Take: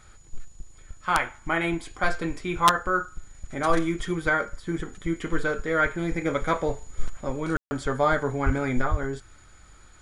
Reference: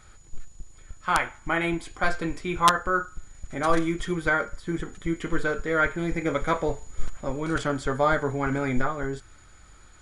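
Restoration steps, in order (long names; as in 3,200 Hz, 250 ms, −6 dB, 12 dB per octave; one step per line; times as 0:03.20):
clipped peaks rebuilt −9.5 dBFS
0:08.45–0:08.57: high-pass filter 140 Hz 24 dB per octave
0:08.90–0:09.02: high-pass filter 140 Hz 24 dB per octave
ambience match 0:07.57–0:07.71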